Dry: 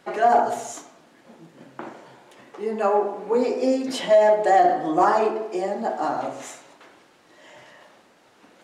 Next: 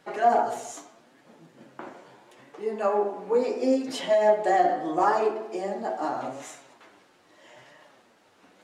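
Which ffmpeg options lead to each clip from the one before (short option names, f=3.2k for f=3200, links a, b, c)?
-af "flanger=delay=6.3:depth=5.1:regen=47:speed=0.77:shape=triangular"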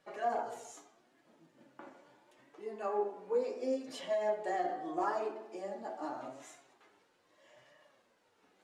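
-af "flanger=delay=1.7:depth=1.8:regen=56:speed=0.26:shape=sinusoidal,volume=-7.5dB"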